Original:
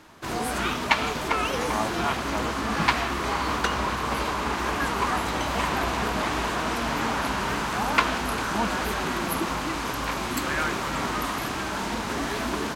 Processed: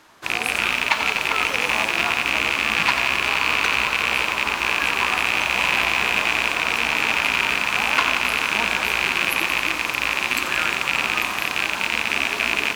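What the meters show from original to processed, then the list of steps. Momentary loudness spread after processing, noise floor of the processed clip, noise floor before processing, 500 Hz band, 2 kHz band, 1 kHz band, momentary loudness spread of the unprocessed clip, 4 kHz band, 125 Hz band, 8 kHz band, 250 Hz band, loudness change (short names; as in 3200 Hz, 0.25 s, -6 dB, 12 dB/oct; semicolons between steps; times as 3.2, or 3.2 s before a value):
3 LU, -28 dBFS, -30 dBFS, -1.5 dB, +10.5 dB, +1.0 dB, 5 LU, +9.0 dB, -6.5 dB, +4.0 dB, -5.5 dB, +7.0 dB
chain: rattling part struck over -33 dBFS, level -7 dBFS; low shelf 400 Hz -11 dB; lo-fi delay 89 ms, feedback 80%, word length 7-bit, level -9 dB; gain +1.5 dB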